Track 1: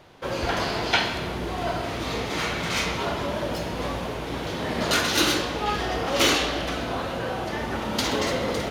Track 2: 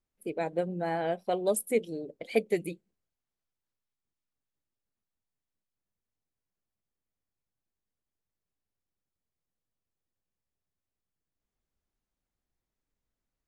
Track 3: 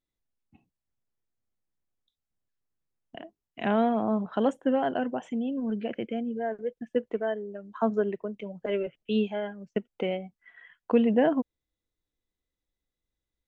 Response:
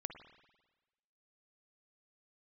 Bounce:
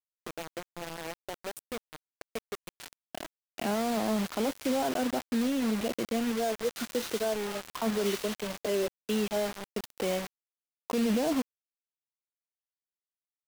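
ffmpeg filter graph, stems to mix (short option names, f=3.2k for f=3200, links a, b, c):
-filter_complex "[0:a]highpass=790,asoftclip=type=tanh:threshold=-13dB,adelay=1850,volume=-17.5dB,asplit=2[a][b];[b]volume=-21.5dB[c];[1:a]acompressor=threshold=-31dB:ratio=8,volume=-6dB,asplit=3[d][e][f];[e]volume=-23dB[g];[2:a]highpass=140,volume=2dB[h];[f]apad=whole_len=465596[i];[a][i]sidechaincompress=threshold=-56dB:ratio=16:attack=5.7:release=118[j];[d][h]amix=inputs=2:normalize=0,equalizer=f=1.8k:t=o:w=0.36:g=-8,alimiter=limit=-21.5dB:level=0:latency=1:release=27,volume=0dB[k];[3:a]atrim=start_sample=2205[l];[c][g]amix=inputs=2:normalize=0[m];[m][l]afir=irnorm=-1:irlink=0[n];[j][k][n]amix=inputs=3:normalize=0,acrusher=bits=5:mix=0:aa=0.000001"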